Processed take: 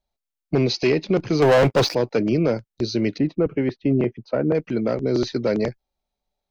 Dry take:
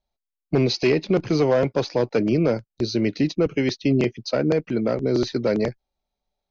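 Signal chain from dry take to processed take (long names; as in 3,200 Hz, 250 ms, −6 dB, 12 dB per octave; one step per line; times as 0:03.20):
0:01.42–0:01.95: leveller curve on the samples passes 3
0:03.18–0:04.55: low-pass filter 1,600 Hz 12 dB per octave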